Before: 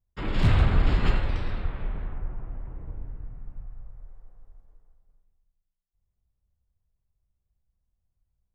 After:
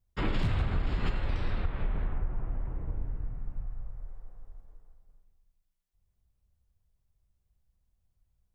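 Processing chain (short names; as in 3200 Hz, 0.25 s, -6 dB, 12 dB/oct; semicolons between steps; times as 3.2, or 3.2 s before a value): compressor 12:1, threshold -27 dBFS, peak gain reduction 13.5 dB; gain +3 dB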